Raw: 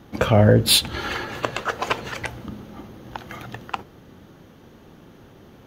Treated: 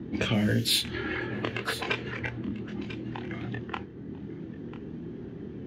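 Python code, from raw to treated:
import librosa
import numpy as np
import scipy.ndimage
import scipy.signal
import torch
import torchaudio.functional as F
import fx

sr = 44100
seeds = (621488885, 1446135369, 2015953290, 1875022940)

p1 = fx.spec_quant(x, sr, step_db=15)
p2 = fx.highpass(p1, sr, hz=140.0, slope=6)
p3 = fx.env_lowpass(p2, sr, base_hz=710.0, full_db=-14.5)
p4 = fx.band_shelf(p3, sr, hz=840.0, db=-12.0, octaves=1.7)
p5 = fx.doubler(p4, sr, ms=25.0, db=-4.0)
p6 = p5 + fx.echo_single(p5, sr, ms=993, db=-24.0, dry=0)
y = fx.band_squash(p6, sr, depth_pct=70)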